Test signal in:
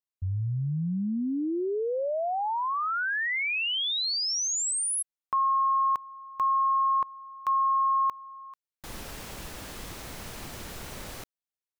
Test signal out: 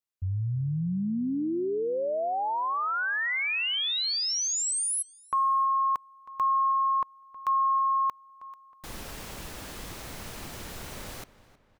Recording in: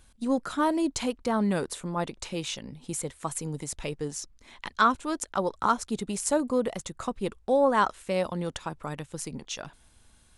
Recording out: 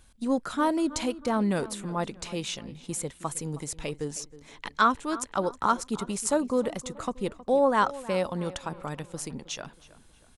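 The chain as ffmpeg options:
ffmpeg -i in.wav -filter_complex "[0:a]asplit=2[link_01][link_02];[link_02]adelay=317,lowpass=frequency=3300:poles=1,volume=-17dB,asplit=2[link_03][link_04];[link_04]adelay=317,lowpass=frequency=3300:poles=1,volume=0.45,asplit=2[link_05][link_06];[link_06]adelay=317,lowpass=frequency=3300:poles=1,volume=0.45,asplit=2[link_07][link_08];[link_08]adelay=317,lowpass=frequency=3300:poles=1,volume=0.45[link_09];[link_01][link_03][link_05][link_07][link_09]amix=inputs=5:normalize=0" out.wav

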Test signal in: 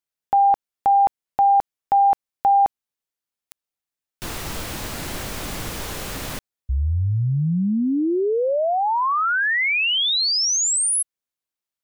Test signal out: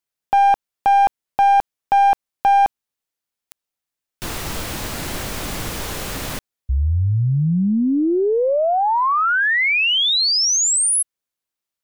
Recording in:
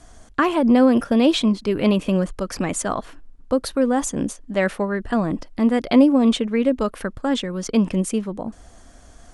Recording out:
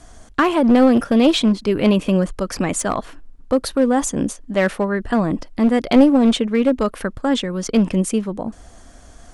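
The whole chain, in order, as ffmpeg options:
ffmpeg -i in.wav -af "aeval=exprs='0.631*(cos(1*acos(clip(val(0)/0.631,-1,1)))-cos(1*PI/2))+0.0126*(cos(6*acos(clip(val(0)/0.631,-1,1)))-cos(6*PI/2))+0.01*(cos(8*acos(clip(val(0)/0.631,-1,1)))-cos(8*PI/2))':channel_layout=same,aeval=exprs='clip(val(0),-1,0.168)':channel_layout=same,volume=3dB" out.wav

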